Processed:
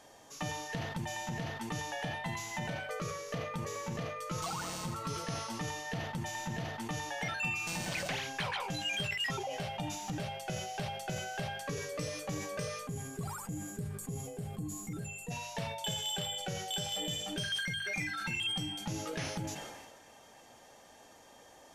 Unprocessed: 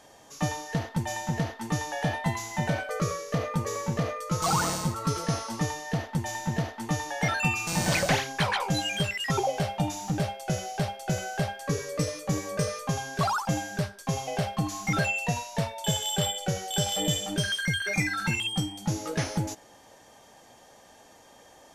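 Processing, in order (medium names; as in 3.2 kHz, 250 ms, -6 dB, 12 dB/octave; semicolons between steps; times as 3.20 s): hum notches 50/100/150/200 Hz; compression, threshold -33 dBFS, peak gain reduction 12.5 dB; time-frequency box 12.87–15.31 s, 510–6700 Hz -16 dB; dynamic bell 2.8 kHz, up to +6 dB, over -54 dBFS, Q 1.5; on a send: feedback echo behind a band-pass 294 ms, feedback 76%, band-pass 1.6 kHz, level -23 dB; on the sum: decay stretcher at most 37 dB/s; trim -3.5 dB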